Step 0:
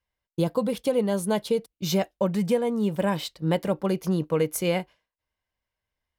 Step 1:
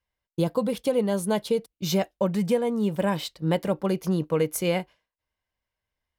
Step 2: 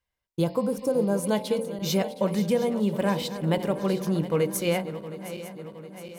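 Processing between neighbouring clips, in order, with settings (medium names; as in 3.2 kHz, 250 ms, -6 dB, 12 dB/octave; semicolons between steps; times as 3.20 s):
no audible change
backward echo that repeats 358 ms, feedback 75%, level -13 dB; de-hum 45.33 Hz, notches 25; spectral replace 0.51–1.19 s, 1.7–5.3 kHz after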